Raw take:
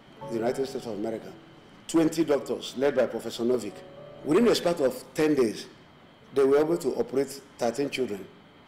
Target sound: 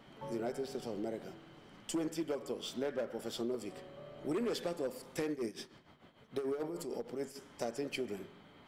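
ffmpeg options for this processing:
-filter_complex "[0:a]asettb=1/sr,asplit=3[a][b][c];[a]atrim=end=5.314[d];[b]atrim=start=5.31:end=7.36,asetpts=PTS-STARTPTS,afade=t=in:d=0.004:c=qsin,afade=t=out:st=2.046:d=0.004:c=qsin,tremolo=f=6.7:d=0.72[e];[c]atrim=start=7.356[f];[d][e]acrossfade=d=0.004:c1=hsin:c2=qsin[g];[g][f]acrossfade=d=0.004:c1=qsin:c2=hsin,acompressor=threshold=-29dB:ratio=4,volume=-5.5dB"

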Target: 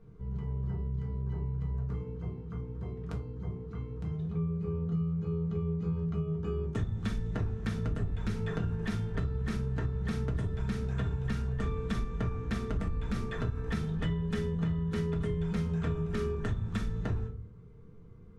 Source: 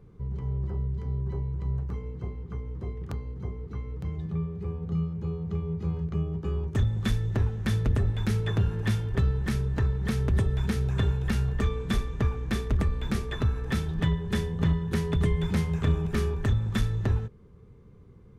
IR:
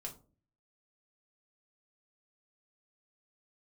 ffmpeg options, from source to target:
-filter_complex "[1:a]atrim=start_sample=2205[a];[0:a][a]afir=irnorm=-1:irlink=0,acompressor=threshold=-28dB:ratio=6,lowpass=8.9k,equalizer=f=1.4k:w=4.6:g=4.5"

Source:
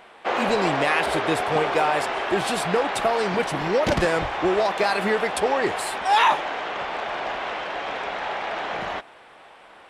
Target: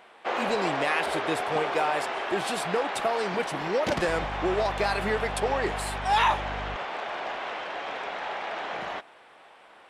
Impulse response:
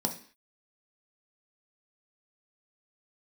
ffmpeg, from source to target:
-filter_complex "[0:a]lowshelf=f=110:g=-9,asettb=1/sr,asplit=3[a][b][c];[a]atrim=end=4.084[d];[b]atrim=start=4.08:end=6.76,asetpts=PTS-STARTPTS,afade=t=in:d=0.004:c=qsin,afade=t=out:st=2.676:d=0.004:c=qsin,aeval=exprs='val(0)+0.0282*(sin(2*PI*50*n/s)+sin(2*PI*2*50*n/s)/2+sin(2*PI*3*50*n/s)/3+sin(2*PI*4*50*n/s)/4+sin(2*PI*5*50*n/s)/5)':c=same[e];[c]atrim=start=6.756[f];[d][e]acrossfade=d=0.004:c1=hsin:c2=qsin[g];[g][f]acrossfade=d=0.004:c1=qsin:c2=hsin,volume=-4.5dB"

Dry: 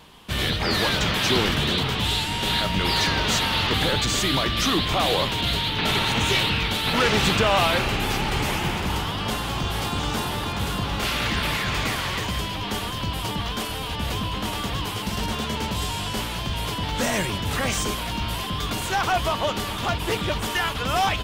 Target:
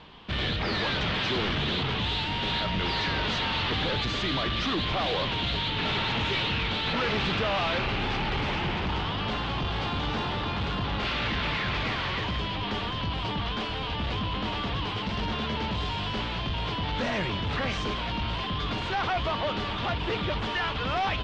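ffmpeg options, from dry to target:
-af "asoftclip=type=tanh:threshold=-24dB,lowpass=f=4.2k:w=0.5412,lowpass=f=4.2k:w=1.3066"

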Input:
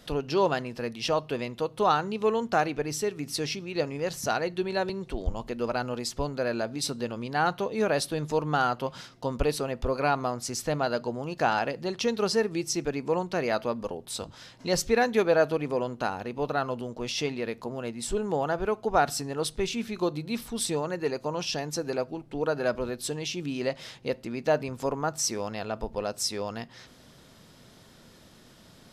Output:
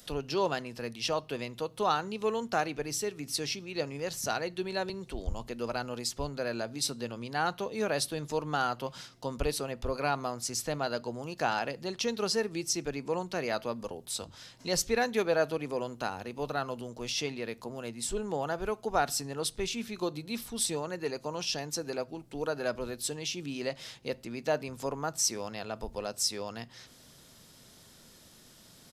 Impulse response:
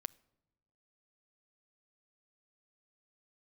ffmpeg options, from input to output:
-filter_complex "[0:a]highshelf=f=3.1k:g=7,acrossover=split=140|5700[a][b][c];[a]asplit=2[d][e];[e]adelay=43,volume=-4.5dB[f];[d][f]amix=inputs=2:normalize=0[g];[c]acompressor=mode=upward:threshold=-49dB:ratio=2.5[h];[g][b][h]amix=inputs=3:normalize=0,volume=-5.5dB"

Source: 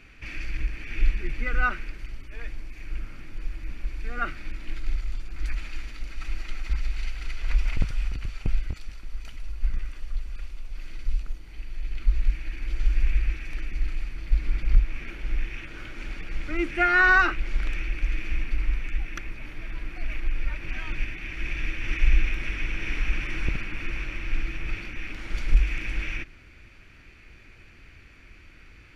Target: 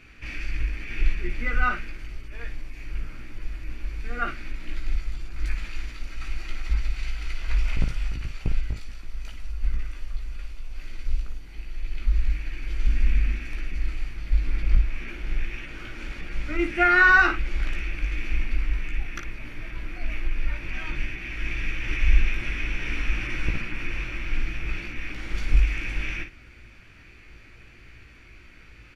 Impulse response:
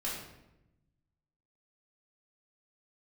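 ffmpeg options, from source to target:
-filter_complex "[0:a]asettb=1/sr,asplit=3[a][b][c];[a]atrim=end=12.874[d];[b]atrim=start=12.87:end=13.48,asetpts=PTS-STARTPTS,afade=t=in:d=0.004:c=qsin,afade=t=out:st=0.606:d=0.004:c=qsin,equalizer=f=230:t=o:w=0.43:g=10.5[e];[c]atrim=start=13.476[f];[d][e]acrossfade=d=0.004:c1=hsin:c2=qsin[g];[g][f]acrossfade=d=0.004:c1=qsin:c2=hsin,asplit=2[h][i];[i]aecho=0:1:17|56:0.562|0.376[j];[h][j]amix=inputs=2:normalize=0"

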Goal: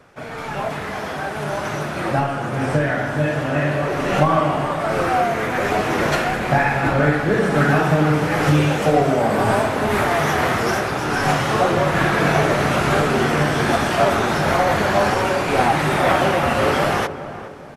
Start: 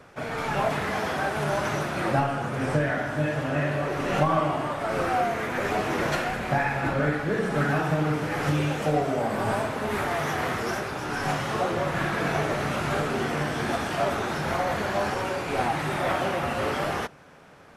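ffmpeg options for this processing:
-filter_complex "[0:a]asplit=2[a][b];[b]adelay=415,lowpass=f=1.1k:p=1,volume=-11dB,asplit=2[c][d];[d]adelay=415,lowpass=f=1.1k:p=1,volume=0.41,asplit=2[e][f];[f]adelay=415,lowpass=f=1.1k:p=1,volume=0.41,asplit=2[g][h];[h]adelay=415,lowpass=f=1.1k:p=1,volume=0.41[i];[c][e][g][i]amix=inputs=4:normalize=0[j];[a][j]amix=inputs=2:normalize=0,dynaudnorm=f=620:g=7:m=9.5dB"

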